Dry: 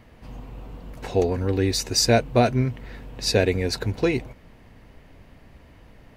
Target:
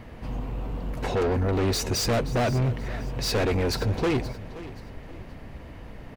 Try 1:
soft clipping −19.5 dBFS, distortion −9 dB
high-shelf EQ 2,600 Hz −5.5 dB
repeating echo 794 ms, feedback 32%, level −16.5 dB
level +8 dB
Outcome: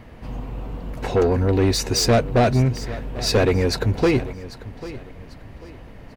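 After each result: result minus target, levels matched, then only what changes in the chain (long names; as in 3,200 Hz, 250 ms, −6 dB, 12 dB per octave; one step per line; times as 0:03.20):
echo 268 ms late; soft clipping: distortion −6 dB
change: repeating echo 526 ms, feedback 32%, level −16.5 dB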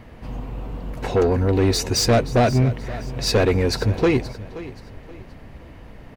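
soft clipping: distortion −6 dB
change: soft clipping −29 dBFS, distortion −3 dB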